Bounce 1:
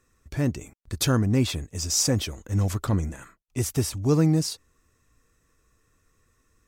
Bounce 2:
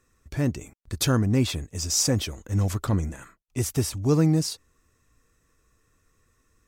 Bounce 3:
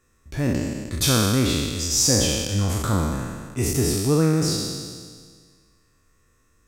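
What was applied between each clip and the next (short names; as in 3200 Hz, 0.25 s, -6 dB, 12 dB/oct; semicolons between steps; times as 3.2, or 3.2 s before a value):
nothing audible
spectral trails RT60 1.78 s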